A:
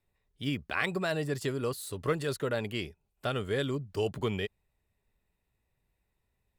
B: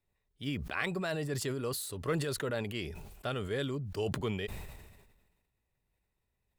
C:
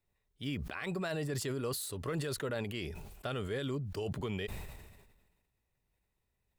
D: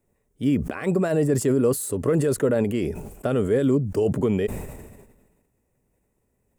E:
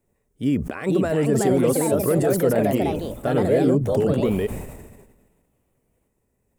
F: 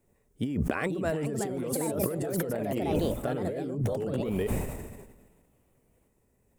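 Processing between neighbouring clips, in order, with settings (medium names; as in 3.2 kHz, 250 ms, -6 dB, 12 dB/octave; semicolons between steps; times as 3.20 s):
decay stretcher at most 44 dB/s; trim -4 dB
peak limiter -27.5 dBFS, peak gain reduction 12 dB
graphic EQ 125/250/500/4000/8000 Hz +3/+10/+8/-12/+7 dB; trim +7 dB
ever faster or slower copies 539 ms, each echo +3 st, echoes 2
compressor with a negative ratio -26 dBFS, ratio -1; trim -4 dB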